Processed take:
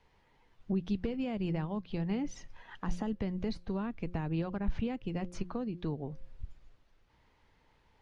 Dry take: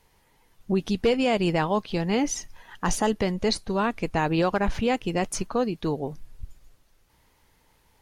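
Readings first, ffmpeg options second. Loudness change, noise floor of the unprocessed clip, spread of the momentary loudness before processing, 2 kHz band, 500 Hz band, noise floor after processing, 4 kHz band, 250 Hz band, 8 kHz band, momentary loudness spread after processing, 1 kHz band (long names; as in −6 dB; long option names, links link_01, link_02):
−10.5 dB, −64 dBFS, 7 LU, −16.5 dB, −14.5 dB, −69 dBFS, −18.0 dB, −8.0 dB, −23.0 dB, 10 LU, −17.0 dB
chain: -filter_complex "[0:a]lowpass=3700,bandreject=frequency=177:width_type=h:width=4,bandreject=frequency=354:width_type=h:width=4,bandreject=frequency=531:width_type=h:width=4,acrossover=split=240[link_01][link_02];[link_02]acompressor=threshold=-36dB:ratio=6[link_03];[link_01][link_03]amix=inputs=2:normalize=0,volume=-4dB"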